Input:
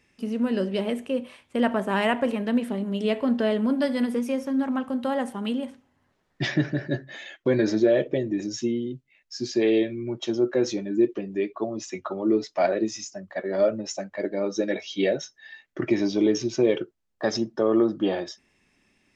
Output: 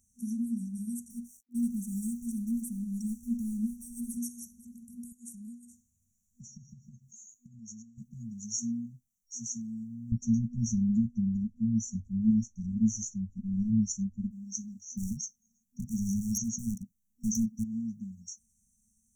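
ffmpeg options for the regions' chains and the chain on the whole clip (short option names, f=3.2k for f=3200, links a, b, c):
-filter_complex "[0:a]asettb=1/sr,asplit=3[a][b][c];[a]atrim=end=1.104[d];[b]atrim=start=1.1:end=4.17,asetpts=PTS-STARTPTS,afade=t=in:d=0.004:c=qsin,afade=t=out:st=3.066:d=0.004:c=qsin,asubboost=boost=9.5:cutoff=68,aecho=1:1:5.1:0.57,atrim=end_sample=135387,aeval=exprs='sgn(val(0))*max(abs(val(0))-0.00282,0)':c=same[e];[c]atrim=start=4.166[f];[d][e]acrossfade=d=0.004:c1=hsin:c2=qsin[g];[g][f]acrossfade=d=0.004:c1=qsin:c2=hsin,asettb=1/sr,asplit=3[h][i][j];[h]atrim=end=5.124[k];[i]atrim=start=5.12:end=7.98,asetpts=PTS-STARTPTS,afade=t=in:d=0.004:c=qsin,afade=t=out:st=2.856:d=0.004:c=qsin,bandreject=f=283.1:t=h:w=4,bandreject=f=566.2:t=h:w=4,bandreject=f=849.3:t=h:w=4,bandreject=f=1.1324k:t=h:w=4,bandreject=f=1.4155k:t=h:w=4,bandreject=f=1.6986k:t=h:w=4,bandreject=f=1.9817k:t=h:w=4,bandreject=f=2.2648k:t=h:w=4,bandreject=f=2.5479k:t=h:w=4,bandreject=f=2.831k:t=h:w=4,bandreject=f=3.1141k:t=h:w=4,bandreject=f=3.3972k:t=h:w=4,bandreject=f=3.6803k:t=h:w=4,bandreject=f=3.9634k:t=h:w=4,bandreject=f=4.2465k:t=h:w=4,bandreject=f=4.5296k:t=h:w=4,bandreject=f=4.8127k:t=h:w=4,bandreject=f=5.0958k:t=h:w=4,bandreject=f=5.3789k:t=h:w=4,bandreject=f=5.662k:t=h:w=4,bandreject=f=5.9451k:t=h:w=4,bandreject=f=6.2282k:t=h:w=4,bandreject=f=6.5113k:t=h:w=4,bandreject=f=6.7944k:t=h:w=4,bandreject=f=7.0775k:t=h:w=4,bandreject=f=7.3606k:t=h:w=4,bandreject=f=7.6437k:t=h:w=4,bandreject=f=7.9268k:t=h:w=4,bandreject=f=8.2099k:t=h:w=4,bandreject=f=8.493k:t=h:w=4,bandreject=f=8.7761k:t=h:w=4,bandreject=f=9.0592k:t=h:w=4,bandreject=f=9.3423k:t=h:w=4,acompressor=threshold=-38dB:ratio=3:attack=3.2:release=140:knee=1:detection=peak,equalizer=f=7k:t=o:w=0.21:g=8[l];[j]atrim=start=7.976[m];[k][l]acrossfade=d=0.004:c1=hsin:c2=qsin[n];[n][m]acrossfade=d=0.004:c1=qsin:c2=hsin,asettb=1/sr,asplit=3[o][p][q];[o]atrim=end=10.124[r];[p]atrim=start=10.12:end=14.31,asetpts=PTS-STARTPTS,afade=t=in:d=0.004:c=qsin,afade=t=out:st=4.186:d=0.004:c=qsin,aemphasis=mode=reproduction:type=riaa,acontrast=58[s];[q]atrim=start=14.306[t];[r][s]acrossfade=d=0.004:c1=hsin:c2=qsin[u];[u][t]acrossfade=d=0.004:c1=qsin:c2=hsin,asettb=1/sr,asplit=3[v][w][x];[v]atrim=end=14.924[y];[w]atrim=start=14.92:end=17.64,asetpts=PTS-STARTPTS,afade=t=in:d=0.004:c=qsin,afade=t=out:st=2.716:d=0.004:c=qsin,equalizer=f=200:w=1:g=14.5,volume=20dB,asoftclip=hard,volume=-20dB[z];[x]atrim=start=17.636[aa];[y][z]acrossfade=d=0.004:c1=hsin:c2=qsin[ab];[ab][aa]acrossfade=d=0.004:c1=qsin:c2=hsin,highshelf=f=5.8k:g=10.5,afftfilt=real='re*(1-between(b*sr/4096,240,5600))':imag='im*(1-between(b*sr/4096,240,5600))':win_size=4096:overlap=0.75,equalizer=f=150:w=1.7:g=-12"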